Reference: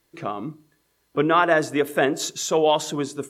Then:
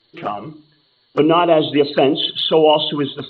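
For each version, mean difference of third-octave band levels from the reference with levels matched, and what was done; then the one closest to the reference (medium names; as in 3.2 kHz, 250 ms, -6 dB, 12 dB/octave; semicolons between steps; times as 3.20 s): 6.0 dB: knee-point frequency compression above 2.8 kHz 4:1; hum notches 50/100/150 Hz; touch-sensitive flanger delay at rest 8.8 ms, full sweep at -19.5 dBFS; Schroeder reverb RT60 0.31 s, combs from 29 ms, DRR 19 dB; trim +8 dB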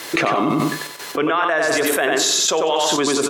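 10.0 dB: trance gate "xx.xxxx.x..." 121 bpm -12 dB; frequency weighting A; feedback delay 93 ms, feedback 24%, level -4.5 dB; level flattener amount 100%; trim -2 dB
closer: first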